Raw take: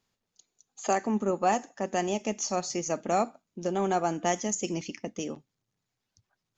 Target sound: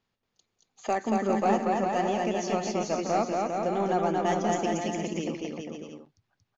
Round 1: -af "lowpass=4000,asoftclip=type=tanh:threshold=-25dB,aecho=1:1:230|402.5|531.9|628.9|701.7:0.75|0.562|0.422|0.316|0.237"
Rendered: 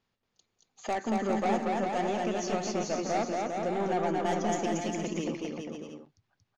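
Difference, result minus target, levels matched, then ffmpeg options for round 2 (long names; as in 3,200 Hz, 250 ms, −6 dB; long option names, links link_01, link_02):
soft clipping: distortion +11 dB
-af "lowpass=4000,asoftclip=type=tanh:threshold=-15.5dB,aecho=1:1:230|402.5|531.9|628.9|701.7:0.75|0.562|0.422|0.316|0.237"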